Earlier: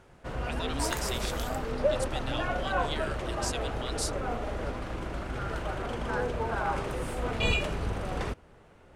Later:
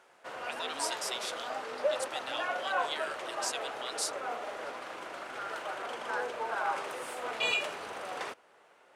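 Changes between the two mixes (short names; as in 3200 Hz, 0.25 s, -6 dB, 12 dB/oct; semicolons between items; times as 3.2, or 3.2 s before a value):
second sound: add band-pass 3400 Hz, Q 2.3; master: add HPF 610 Hz 12 dB/oct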